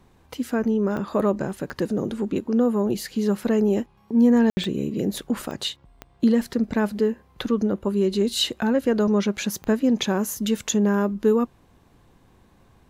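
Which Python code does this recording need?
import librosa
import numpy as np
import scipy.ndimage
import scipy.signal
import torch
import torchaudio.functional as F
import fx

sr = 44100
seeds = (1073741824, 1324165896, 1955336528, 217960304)

y = fx.fix_declick_ar(x, sr, threshold=10.0)
y = fx.fix_ambience(y, sr, seeds[0], print_start_s=11.5, print_end_s=12.0, start_s=4.5, end_s=4.57)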